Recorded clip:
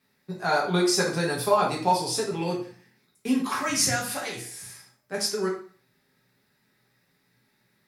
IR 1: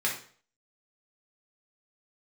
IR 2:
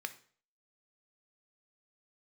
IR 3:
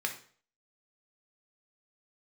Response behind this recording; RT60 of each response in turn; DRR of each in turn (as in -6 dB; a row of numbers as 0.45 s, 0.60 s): 1; 0.45 s, 0.45 s, 0.45 s; -3.5 dB, 9.0 dB, 2.5 dB